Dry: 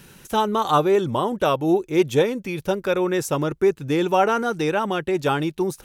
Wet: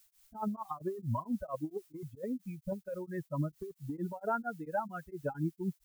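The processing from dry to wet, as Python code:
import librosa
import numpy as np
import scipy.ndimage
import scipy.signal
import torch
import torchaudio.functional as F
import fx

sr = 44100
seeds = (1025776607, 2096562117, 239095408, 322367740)

y = fx.bin_expand(x, sr, power=3.0)
y = scipy.signal.sosfilt(scipy.signal.butter(4, 1200.0, 'lowpass', fs=sr, output='sos'), y)
y = fx.over_compress(y, sr, threshold_db=-31.0, ratio=-1.0)
y = fx.dmg_noise_colour(y, sr, seeds[0], colour='blue', level_db=-62.0)
y = y * np.abs(np.cos(np.pi * 4.4 * np.arange(len(y)) / sr))
y = y * 10.0 ** (-2.0 / 20.0)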